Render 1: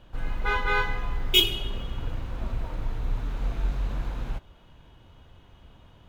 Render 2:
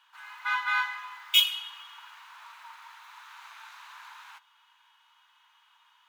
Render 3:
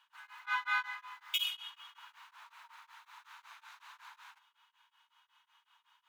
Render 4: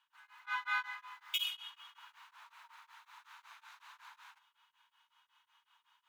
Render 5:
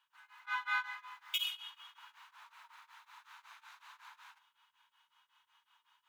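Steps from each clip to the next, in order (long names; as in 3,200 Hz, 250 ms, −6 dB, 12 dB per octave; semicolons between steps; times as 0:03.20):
Chebyshev high-pass filter 920 Hz, order 5
tremolo along a rectified sine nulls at 5.4 Hz; level −4 dB
automatic gain control gain up to 6 dB; level −8 dB
convolution reverb, pre-delay 3 ms, DRR 16.5 dB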